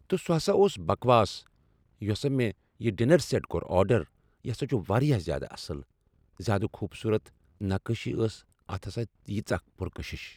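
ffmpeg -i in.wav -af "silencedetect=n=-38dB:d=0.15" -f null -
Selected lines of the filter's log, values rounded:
silence_start: 1.39
silence_end: 2.01 | silence_duration: 0.63
silence_start: 2.51
silence_end: 2.80 | silence_duration: 0.29
silence_start: 4.03
silence_end: 4.45 | silence_duration: 0.41
silence_start: 5.82
silence_end: 6.40 | silence_duration: 0.58
silence_start: 7.27
silence_end: 7.61 | silence_duration: 0.34
silence_start: 8.35
silence_end: 8.69 | silence_duration: 0.34
silence_start: 9.06
silence_end: 9.28 | silence_duration: 0.23
silence_start: 9.59
silence_end: 9.80 | silence_duration: 0.21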